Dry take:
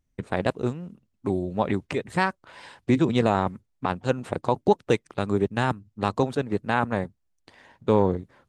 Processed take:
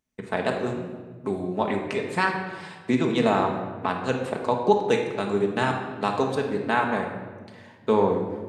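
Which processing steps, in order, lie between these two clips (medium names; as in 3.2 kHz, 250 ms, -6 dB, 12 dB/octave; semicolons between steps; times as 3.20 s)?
high-pass 320 Hz 6 dB/octave; simulated room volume 1200 m³, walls mixed, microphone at 1.5 m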